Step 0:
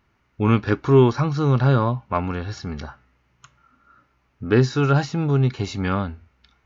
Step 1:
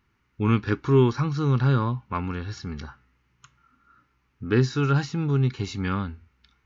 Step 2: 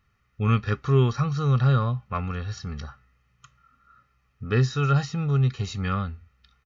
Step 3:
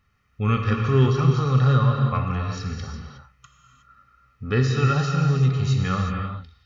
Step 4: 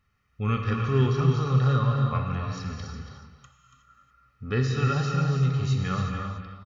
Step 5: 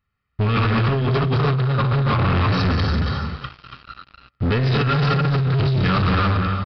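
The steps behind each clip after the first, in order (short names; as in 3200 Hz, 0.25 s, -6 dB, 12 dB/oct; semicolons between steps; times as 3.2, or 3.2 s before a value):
bell 640 Hz -13.5 dB 0.53 oct; gain -3 dB
comb 1.6 ms, depth 74%; gain -1.5 dB
non-linear reverb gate 0.39 s flat, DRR 1.5 dB; gain +1 dB
echo 0.283 s -9 dB; gain -4.5 dB
negative-ratio compressor -29 dBFS, ratio -1; sample leveller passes 5; downsampling 11025 Hz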